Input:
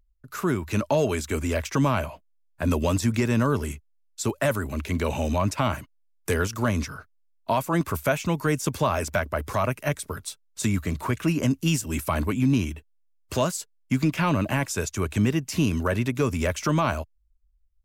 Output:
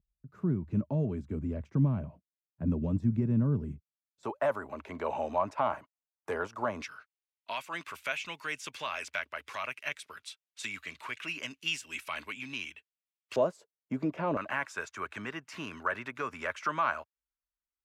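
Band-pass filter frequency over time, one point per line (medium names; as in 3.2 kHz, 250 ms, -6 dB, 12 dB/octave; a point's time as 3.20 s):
band-pass filter, Q 1.7
160 Hz
from 4.23 s 820 Hz
from 6.82 s 2.6 kHz
from 13.36 s 530 Hz
from 14.37 s 1.4 kHz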